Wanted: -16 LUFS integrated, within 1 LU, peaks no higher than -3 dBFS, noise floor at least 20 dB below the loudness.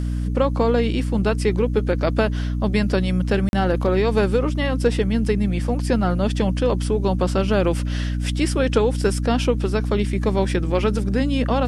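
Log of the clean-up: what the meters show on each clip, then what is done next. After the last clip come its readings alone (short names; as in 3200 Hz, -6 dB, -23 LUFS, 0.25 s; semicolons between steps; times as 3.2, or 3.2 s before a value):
dropouts 1; longest dropout 41 ms; hum 60 Hz; harmonics up to 300 Hz; hum level -21 dBFS; loudness -21.0 LUFS; peak -5.0 dBFS; loudness target -16.0 LUFS
-> interpolate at 3.49, 41 ms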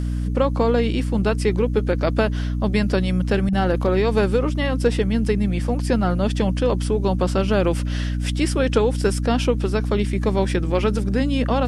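dropouts 0; hum 60 Hz; harmonics up to 300 Hz; hum level -21 dBFS
-> notches 60/120/180/240/300 Hz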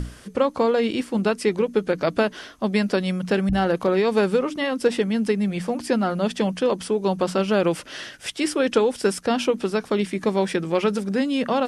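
hum none; loudness -23.0 LUFS; peak -7.5 dBFS; loudness target -16.0 LUFS
-> gain +7 dB; limiter -3 dBFS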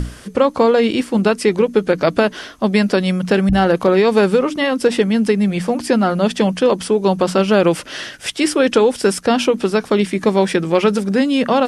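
loudness -16.0 LUFS; peak -3.0 dBFS; noise floor -37 dBFS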